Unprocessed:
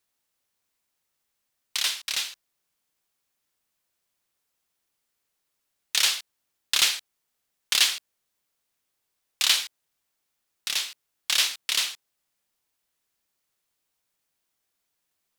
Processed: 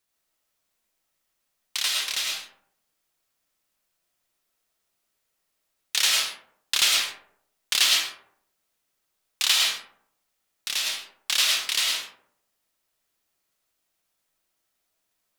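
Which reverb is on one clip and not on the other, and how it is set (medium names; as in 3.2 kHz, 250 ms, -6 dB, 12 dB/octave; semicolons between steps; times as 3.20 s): algorithmic reverb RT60 0.69 s, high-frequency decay 0.4×, pre-delay 65 ms, DRR -1.5 dB; trim -1 dB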